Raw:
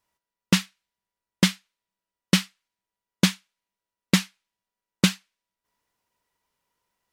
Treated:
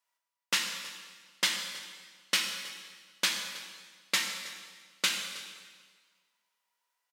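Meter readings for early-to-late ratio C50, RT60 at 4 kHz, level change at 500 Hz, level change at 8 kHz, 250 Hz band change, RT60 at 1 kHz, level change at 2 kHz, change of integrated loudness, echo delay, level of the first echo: 4.5 dB, 1.5 s, -11.5 dB, -2.0 dB, -25.5 dB, 1.6 s, -2.0 dB, -7.5 dB, 0.319 s, -19.0 dB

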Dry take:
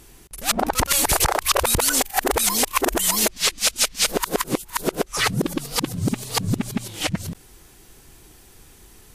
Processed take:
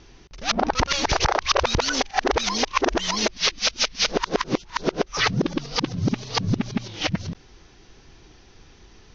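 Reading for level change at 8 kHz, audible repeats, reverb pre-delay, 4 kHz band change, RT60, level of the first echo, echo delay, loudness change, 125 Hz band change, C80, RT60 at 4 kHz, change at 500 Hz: -9.0 dB, none, none, 0.0 dB, none, none, none, -2.5 dB, 0.0 dB, none, none, 0.0 dB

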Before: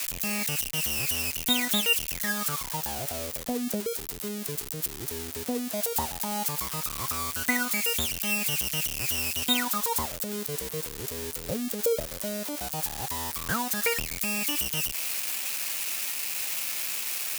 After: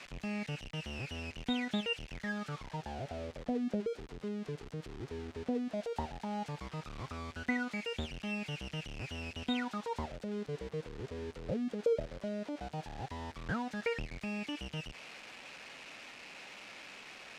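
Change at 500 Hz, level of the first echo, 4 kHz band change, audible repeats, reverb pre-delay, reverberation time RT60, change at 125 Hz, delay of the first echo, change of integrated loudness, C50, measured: -4.5 dB, none, -14.5 dB, none, none, none, -3.0 dB, none, -12.0 dB, none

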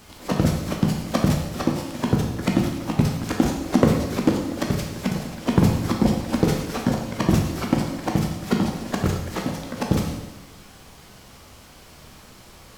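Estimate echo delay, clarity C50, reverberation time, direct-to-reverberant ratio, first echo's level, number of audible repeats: none, 4.0 dB, 1.1 s, 1.0 dB, none, none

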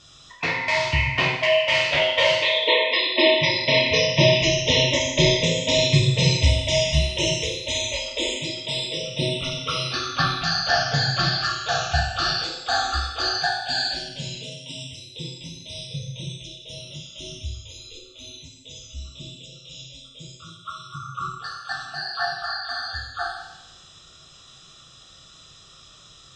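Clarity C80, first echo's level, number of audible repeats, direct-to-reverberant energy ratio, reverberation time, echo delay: 6.0 dB, none, none, -2.5 dB, 0.95 s, none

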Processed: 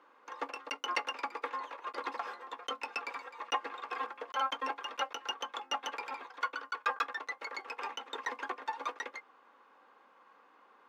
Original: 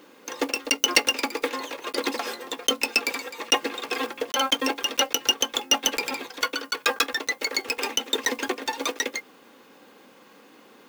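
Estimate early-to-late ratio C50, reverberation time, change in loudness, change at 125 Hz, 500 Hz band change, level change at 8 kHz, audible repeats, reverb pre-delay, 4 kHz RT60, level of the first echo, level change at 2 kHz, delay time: none, none, -13.0 dB, n/a, -14.5 dB, -25.0 dB, none, none, none, none, -12.0 dB, none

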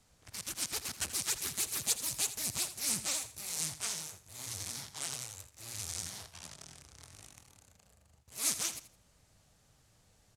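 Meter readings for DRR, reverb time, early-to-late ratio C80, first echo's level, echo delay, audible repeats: none, none, none, -13.0 dB, 82 ms, 2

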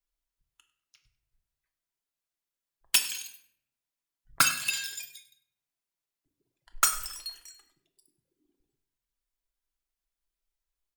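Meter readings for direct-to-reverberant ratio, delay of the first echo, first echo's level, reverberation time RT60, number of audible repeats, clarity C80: 4.5 dB, 99 ms, -17.5 dB, 0.65 s, 1, 13.0 dB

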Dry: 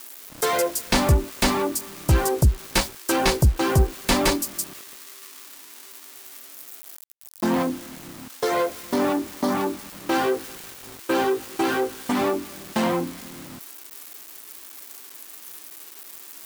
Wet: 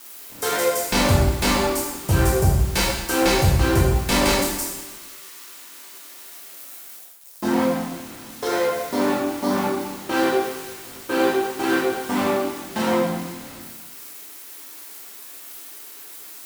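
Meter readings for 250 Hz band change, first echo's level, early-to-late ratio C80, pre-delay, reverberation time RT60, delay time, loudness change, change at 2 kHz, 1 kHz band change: +2.0 dB, none, 3.5 dB, 5 ms, 1.1 s, none, +2.0 dB, +3.0 dB, +1.5 dB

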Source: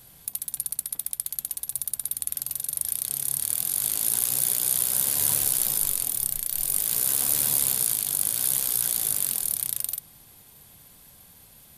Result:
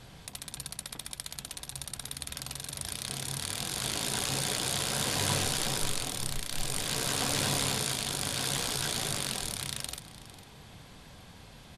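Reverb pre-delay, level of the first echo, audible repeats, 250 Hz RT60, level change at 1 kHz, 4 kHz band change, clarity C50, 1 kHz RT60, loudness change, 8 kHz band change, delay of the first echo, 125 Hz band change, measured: none, -16.5 dB, 1, none, +7.0 dB, +4.0 dB, none, none, -8.0 dB, -9.0 dB, 0.453 s, +7.5 dB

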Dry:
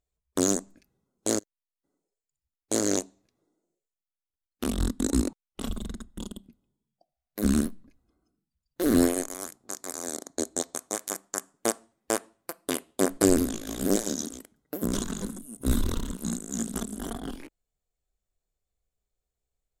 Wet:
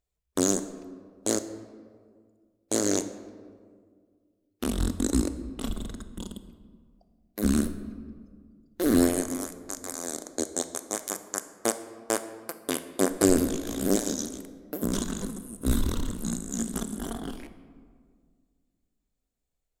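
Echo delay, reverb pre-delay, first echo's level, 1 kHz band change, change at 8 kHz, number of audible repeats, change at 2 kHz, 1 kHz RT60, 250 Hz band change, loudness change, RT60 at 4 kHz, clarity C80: none, 28 ms, none, +0.5 dB, 0.0 dB, none, +0.5 dB, 1.7 s, +0.5 dB, 0.0 dB, 1.0 s, 13.0 dB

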